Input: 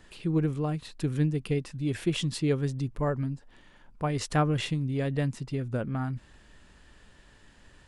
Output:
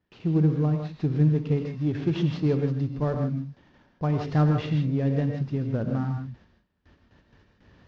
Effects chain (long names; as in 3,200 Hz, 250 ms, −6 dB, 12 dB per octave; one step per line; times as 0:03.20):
variable-slope delta modulation 32 kbit/s
high-pass filter 96 Hz 12 dB per octave
noise gate with hold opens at −47 dBFS
spectral tilt −2.5 dB per octave
in parallel at −10.5 dB: gain into a clipping stage and back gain 22 dB
on the sum: high-frequency loss of the air 57 metres
reverb whose tail is shaped and stops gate 180 ms rising, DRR 4 dB
level −3.5 dB